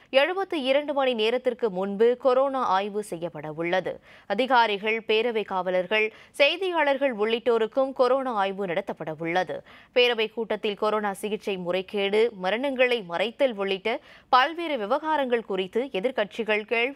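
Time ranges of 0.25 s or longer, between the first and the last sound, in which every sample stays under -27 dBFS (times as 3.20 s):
3.91–4.30 s
6.07–6.40 s
9.56–9.96 s
13.96–14.33 s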